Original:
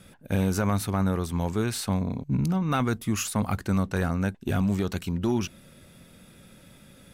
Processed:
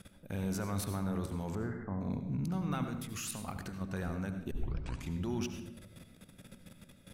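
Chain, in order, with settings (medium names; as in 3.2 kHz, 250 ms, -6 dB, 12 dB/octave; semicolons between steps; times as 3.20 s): level held to a coarse grid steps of 17 dB; peak limiter -29 dBFS, peak gain reduction 8 dB; 1.55–2.01 s: brick-wall FIR low-pass 2.1 kHz; 2.84–3.81 s: compressor with a negative ratio -42 dBFS, ratio -1; 4.51 s: tape start 0.62 s; reverberation RT60 0.80 s, pre-delay 72 ms, DRR 7 dB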